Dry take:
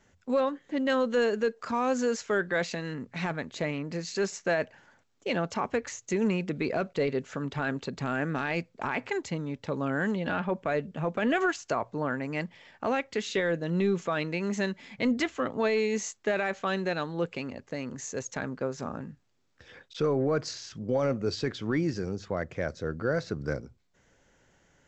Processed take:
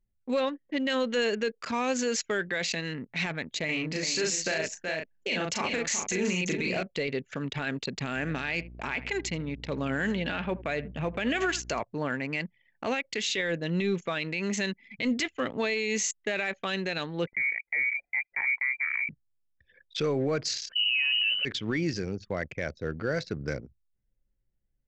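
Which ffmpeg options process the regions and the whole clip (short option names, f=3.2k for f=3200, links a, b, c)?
-filter_complex "[0:a]asettb=1/sr,asplit=3[a][b][c];[a]atrim=end=3.654[d];[b]atrim=start=3.65:end=6.83,asetpts=PTS-STARTPTS,afade=t=in:d=0.004:c=qsin,afade=t=out:st=3.176:d=0.004:c=qsin,highshelf=f=4.9k:g=4.5,asplit=2[e][f];[f]adelay=38,volume=-2.5dB[g];[e][g]amix=inputs=2:normalize=0,atrim=end_sample=140238,aecho=1:1:375:0.376,atrim=end_sample=140238[h];[c]atrim=start=6.826[i];[d][h]acrossfade=d=0.004:c1=hsin:c2=qsin[j];[j][i]acrossfade=d=0.004:c1=qsin:c2=hsin,asettb=1/sr,asplit=3[k][l][m];[k]atrim=end=8.154[n];[l]atrim=start=8.15:end=11.8,asetpts=PTS-STARTPTS,afade=t=in:d=0.004:c=qsin,afade=t=out:st=3.646:d=0.004:c=qsin,aeval=exprs='val(0)+0.00631*(sin(2*PI*60*n/s)+sin(2*PI*2*60*n/s)/2+sin(2*PI*3*60*n/s)/3+sin(2*PI*4*60*n/s)/4+sin(2*PI*5*60*n/s)/5)':c=same,aecho=1:1:81|162:0.119|0.0238,atrim=end_sample=160965[o];[m]atrim=start=11.796[p];[n][o]acrossfade=d=0.004:c1=hsin:c2=qsin[q];[q][p]acrossfade=d=0.004:c1=qsin:c2=hsin,asettb=1/sr,asplit=3[r][s][t];[r]atrim=end=17.274[u];[s]atrim=start=17.27:end=19.09,asetpts=PTS-STARTPTS,afade=t=in:d=0.004:c=qsin,afade=t=out:st=1.816:d=0.004:c=qsin,equalizer=f=1.3k:t=o:w=0.29:g=-4,lowpass=f=2.1k:t=q:w=0.5098,lowpass=f=2.1k:t=q:w=0.6013,lowpass=f=2.1k:t=q:w=0.9,lowpass=f=2.1k:t=q:w=2.563,afreqshift=-2500[v];[t]atrim=start=19.086[w];[u][v]acrossfade=d=0.004:c1=hsin:c2=qsin[x];[x][w]acrossfade=d=0.004:c1=qsin:c2=hsin,asettb=1/sr,asplit=3[y][z][aa];[y]atrim=end=20.694[ab];[z]atrim=start=20.69:end=21.45,asetpts=PTS-STARTPTS,afade=t=in:d=0.004:c=qsin,afade=t=out:st=0.756:d=0.004:c=qsin,bandreject=f=52.75:t=h:w=4,bandreject=f=105.5:t=h:w=4,bandreject=f=158.25:t=h:w=4,bandreject=f=211:t=h:w=4,acontrast=70,lowpass=f=2.6k:t=q:w=0.5098,lowpass=f=2.6k:t=q:w=0.6013,lowpass=f=2.6k:t=q:w=0.9,lowpass=f=2.6k:t=q:w=2.563,afreqshift=-3100[ac];[aa]atrim=start=21.446[ad];[ab][ac]acrossfade=d=0.004:c1=hsin:c2=qsin[ae];[ae][ad]acrossfade=d=0.004:c1=qsin:c2=hsin,anlmdn=0.158,highshelf=f=1.7k:t=q:w=1.5:g=8,alimiter=limit=-19.5dB:level=0:latency=1:release=45"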